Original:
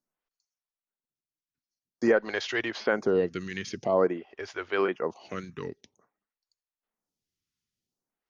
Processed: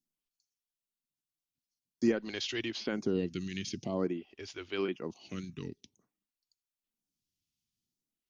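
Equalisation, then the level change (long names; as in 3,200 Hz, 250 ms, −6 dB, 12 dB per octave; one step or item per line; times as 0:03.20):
flat-topped bell 920 Hz −13.5 dB 2.5 octaves
0.0 dB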